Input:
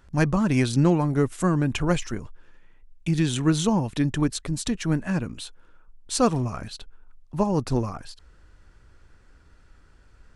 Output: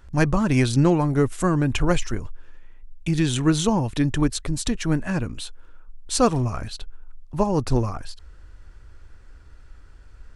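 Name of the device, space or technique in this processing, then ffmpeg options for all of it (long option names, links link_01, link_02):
low shelf boost with a cut just above: -af "lowshelf=frequency=110:gain=7.5,equalizer=frequency=180:width_type=o:width=0.91:gain=-5,volume=2.5dB"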